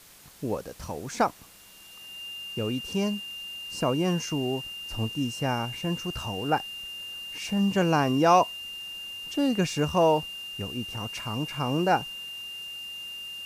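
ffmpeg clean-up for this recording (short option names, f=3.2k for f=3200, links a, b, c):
-af "bandreject=f=2.8k:w=30,afwtdn=0.0028"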